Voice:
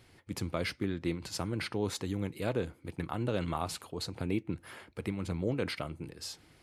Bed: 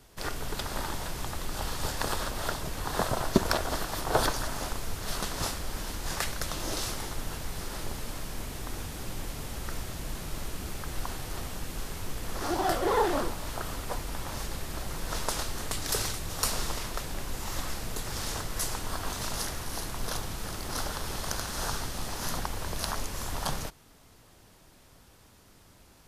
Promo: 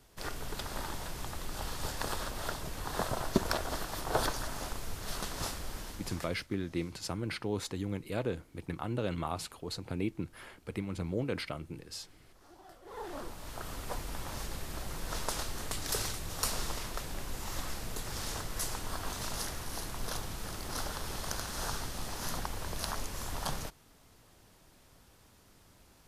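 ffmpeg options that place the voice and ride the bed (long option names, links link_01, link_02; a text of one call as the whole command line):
ffmpeg -i stem1.wav -i stem2.wav -filter_complex "[0:a]adelay=5700,volume=-1.5dB[link_01];[1:a]volume=18.5dB,afade=type=out:start_time=5.66:duration=0.76:silence=0.0749894,afade=type=in:start_time=12.84:duration=1.08:silence=0.0668344[link_02];[link_01][link_02]amix=inputs=2:normalize=0" out.wav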